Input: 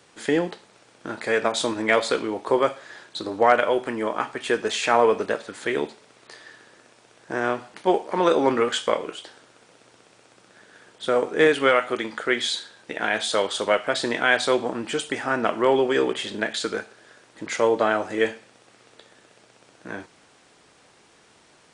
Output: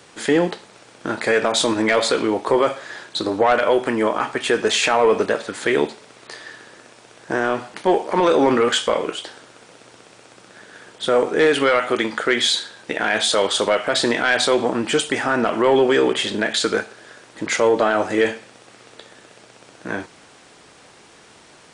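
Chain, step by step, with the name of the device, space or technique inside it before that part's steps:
soft clipper into limiter (soft clipping −10 dBFS, distortion −18 dB; brickwall limiter −16 dBFS, peak gain reduction 5.5 dB)
level +8 dB

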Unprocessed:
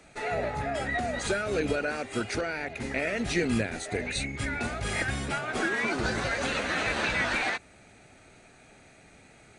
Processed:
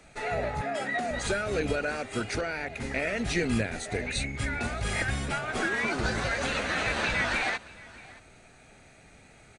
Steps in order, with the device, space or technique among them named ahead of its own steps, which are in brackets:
0:00.61–0:01.11: high-pass filter 170 Hz 24 dB per octave
low shelf boost with a cut just above (low-shelf EQ 63 Hz +6.5 dB; parametric band 320 Hz −2.5 dB 0.77 octaves)
single-tap delay 624 ms −21 dB

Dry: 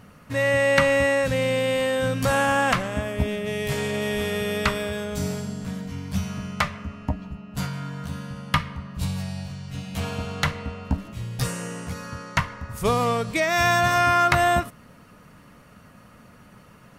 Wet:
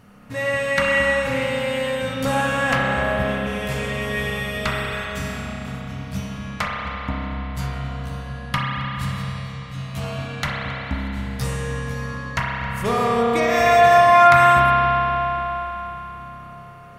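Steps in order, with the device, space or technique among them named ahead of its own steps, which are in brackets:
dub delay into a spring reverb (feedback echo with a low-pass in the loop 269 ms, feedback 74%, low-pass 2,000 Hz, level −12.5 dB; spring reverb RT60 3.9 s, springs 30 ms, chirp 35 ms, DRR −4.5 dB)
level −2.5 dB

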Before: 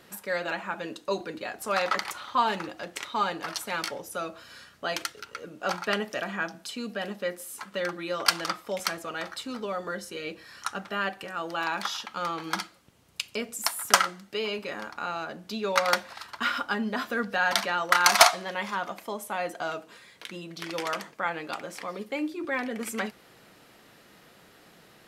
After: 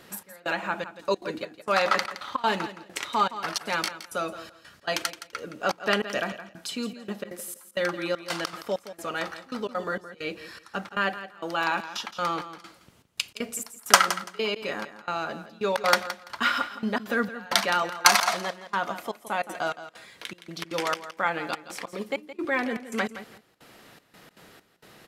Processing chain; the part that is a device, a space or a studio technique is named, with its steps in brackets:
trance gate with a delay (gate pattern "xxx...xxxxx..xx." 197 BPM −24 dB; repeating echo 168 ms, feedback 19%, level −13 dB)
level +3.5 dB

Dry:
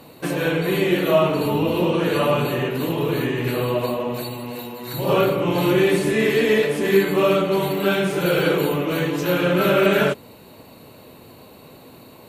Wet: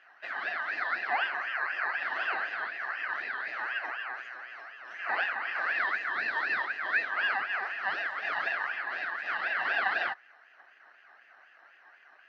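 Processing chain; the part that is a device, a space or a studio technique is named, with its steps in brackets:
voice changer toy (ring modulator whose carrier an LFO sweeps 1,800 Hz, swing 25%, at 4 Hz; loudspeaker in its box 450–3,600 Hz, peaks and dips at 490 Hz −5 dB, 700 Hz +7 dB, 1,000 Hz −6 dB, 1,600 Hz +6 dB, 2,300 Hz −10 dB, 3,500 Hz −8 dB)
level −9 dB

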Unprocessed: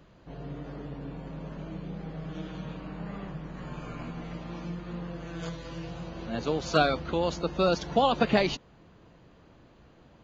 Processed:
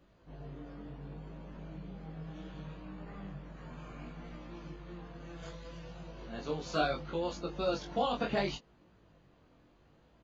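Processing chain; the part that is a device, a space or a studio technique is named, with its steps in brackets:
double-tracked vocal (double-tracking delay 20 ms −5.5 dB; chorus effect 0.68 Hz, delay 16.5 ms, depth 7.8 ms)
level −6 dB

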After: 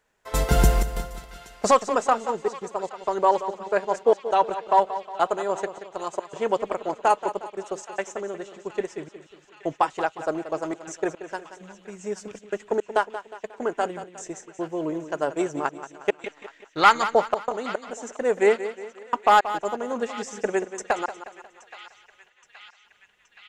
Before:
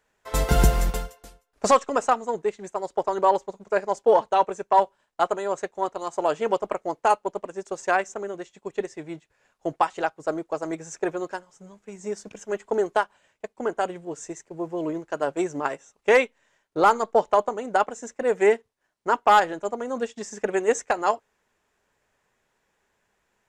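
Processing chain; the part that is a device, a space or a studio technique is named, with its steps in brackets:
0:16.24–0:17.06: octave-band graphic EQ 500/2,000/4,000 Hz −8/+12/+10 dB
trance gate with a delay (gate pattern "xxxxxx.xx.xx" 109 BPM −60 dB; repeating echo 180 ms, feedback 45%, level −12.5 dB)
feedback echo with a band-pass in the loop 823 ms, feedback 85%, band-pass 2,900 Hz, level −15 dB

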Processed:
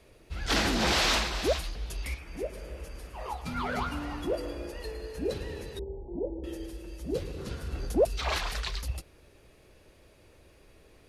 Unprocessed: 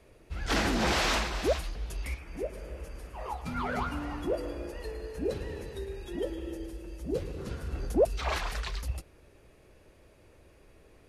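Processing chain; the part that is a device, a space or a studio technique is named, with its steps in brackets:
0:05.79–0:06.44: Butterworth low-pass 940 Hz 96 dB per octave
presence and air boost (parametric band 4,000 Hz +5 dB 1.2 octaves; high-shelf EQ 10,000 Hz +5 dB)

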